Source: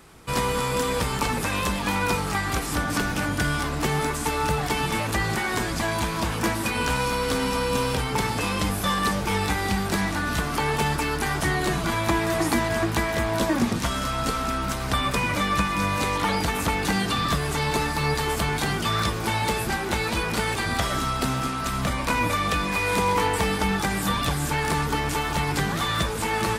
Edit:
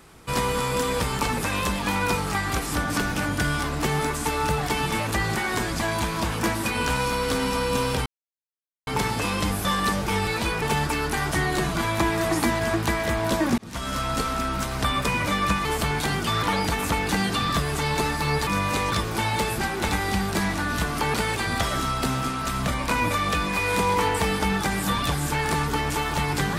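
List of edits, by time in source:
0:08.06: splice in silence 0.81 s
0:09.46–0:10.71: swap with 0:19.98–0:20.33
0:13.67–0:14.06: fade in
0:15.74–0:16.19: swap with 0:18.23–0:19.01

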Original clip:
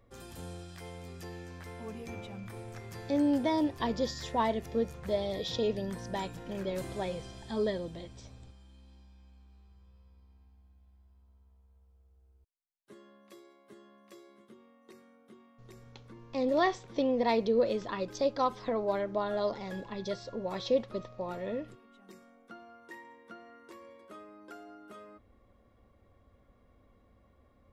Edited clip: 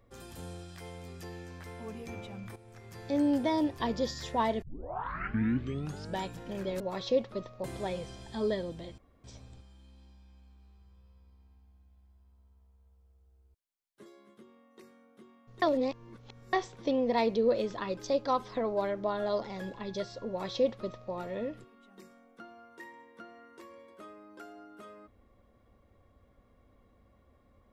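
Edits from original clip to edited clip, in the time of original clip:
0:02.56–0:03.20: fade in, from −14 dB
0:04.62: tape start 1.61 s
0:08.14: splice in room tone 0.26 s
0:12.96–0:14.17: remove
0:15.73–0:16.64: reverse
0:20.39–0:21.23: duplicate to 0:06.80

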